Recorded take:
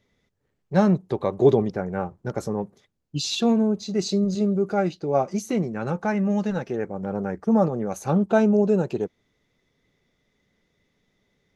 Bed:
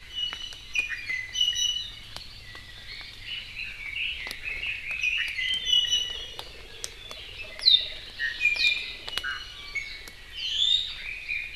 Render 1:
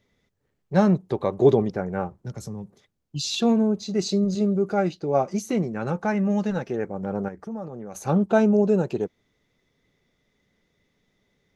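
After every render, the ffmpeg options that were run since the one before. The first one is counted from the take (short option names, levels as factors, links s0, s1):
-filter_complex "[0:a]asettb=1/sr,asplit=3[s0][s1][s2];[s0]atrim=end=2.144[s3];[s1]atrim=start=2.14:end=3.34,asetpts=PTS-STARTPTS,afade=t=in:d=0.004:c=qsin,afade=t=out:st=1.196:d=0.004:c=qsin,acrossover=split=190|3000[s4][s5][s6];[s5]acompressor=threshold=0.00708:ratio=4:attack=3.2:release=140:knee=2.83:detection=peak[s7];[s4][s7][s6]amix=inputs=3:normalize=0[s8];[s2]atrim=start=3.336[s9];[s3][s8]acrossfade=d=0.004:c1=hsin:c2=qsin[s10];[s10][s9]acrossfade=d=0.004:c1=qsin:c2=hsin,asettb=1/sr,asplit=3[s11][s12][s13];[s11]atrim=end=7.284[s14];[s12]atrim=start=7.28:end=7.95,asetpts=PTS-STARTPTS,afade=t=in:d=0.004:c=qsin,afade=t=out:st=0.666:d=0.004:c=qsin,acompressor=threshold=0.0178:ratio=3:attack=3.2:release=140:knee=1:detection=peak[s15];[s13]atrim=start=7.946[s16];[s14][s15]acrossfade=d=0.004:c1=hsin:c2=qsin[s17];[s17][s16]acrossfade=d=0.004:c1=qsin:c2=hsin"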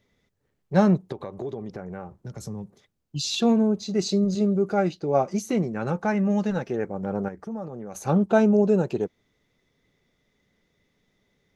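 -filter_complex "[0:a]asettb=1/sr,asplit=3[s0][s1][s2];[s0]atrim=end=1.124[s3];[s1]atrim=start=1.12:end=2.41,asetpts=PTS-STARTPTS,afade=t=in:d=0.004:c=qsin,afade=t=out:st=1.286:d=0.004:c=qsin,acompressor=threshold=0.0251:ratio=4:attack=3.2:release=140:knee=1:detection=peak[s4];[s2]atrim=start=2.406[s5];[s3][s4]acrossfade=d=0.004:c1=hsin:c2=qsin[s6];[s6][s5]acrossfade=d=0.004:c1=qsin:c2=hsin"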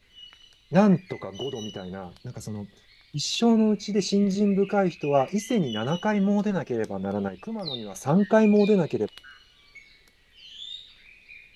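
-filter_complex "[1:a]volume=0.158[s0];[0:a][s0]amix=inputs=2:normalize=0"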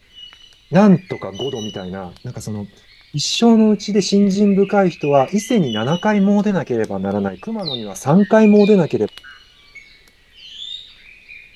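-af "volume=2.66,alimiter=limit=0.891:level=0:latency=1"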